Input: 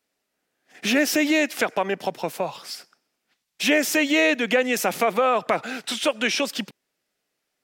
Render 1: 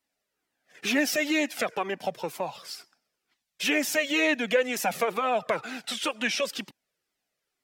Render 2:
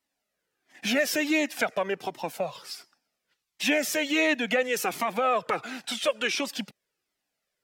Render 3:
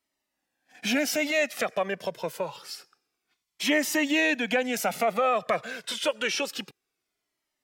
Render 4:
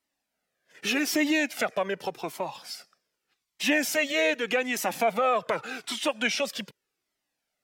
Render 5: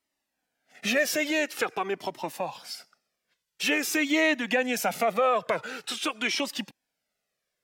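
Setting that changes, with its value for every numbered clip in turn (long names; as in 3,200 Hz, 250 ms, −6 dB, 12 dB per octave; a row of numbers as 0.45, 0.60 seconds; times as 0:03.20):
flanger whose copies keep moving one way, speed: 2.1, 1.4, 0.27, 0.84, 0.47 Hertz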